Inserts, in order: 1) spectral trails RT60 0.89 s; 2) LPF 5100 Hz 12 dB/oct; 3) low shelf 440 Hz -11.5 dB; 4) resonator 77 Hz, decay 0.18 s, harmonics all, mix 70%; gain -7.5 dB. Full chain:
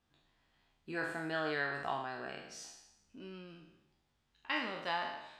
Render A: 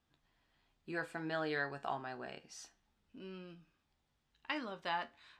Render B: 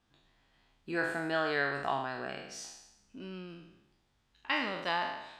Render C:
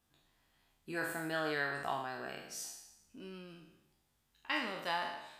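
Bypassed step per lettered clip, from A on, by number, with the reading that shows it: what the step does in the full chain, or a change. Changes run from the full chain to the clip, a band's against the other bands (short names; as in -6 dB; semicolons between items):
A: 1, 125 Hz band +2.5 dB; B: 4, momentary loudness spread change +1 LU; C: 2, 8 kHz band +6.5 dB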